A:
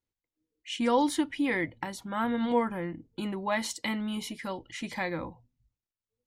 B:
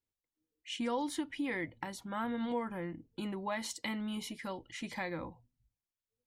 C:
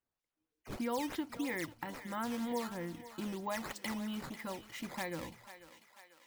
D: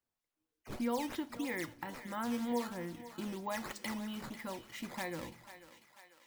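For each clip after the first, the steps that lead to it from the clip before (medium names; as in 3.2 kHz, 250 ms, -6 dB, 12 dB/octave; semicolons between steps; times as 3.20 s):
compression 2.5:1, threshold -29 dBFS, peak gain reduction 6.5 dB; trim -4.5 dB
decimation with a swept rate 9×, swing 160% 3.1 Hz; thinning echo 493 ms, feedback 61%, high-pass 570 Hz, level -12.5 dB; trim -1.5 dB
feedback comb 120 Hz, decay 0.34 s, harmonics all, mix 50%; on a send at -20.5 dB: reverberation RT60 0.90 s, pre-delay 3 ms; on the sum: trim +4 dB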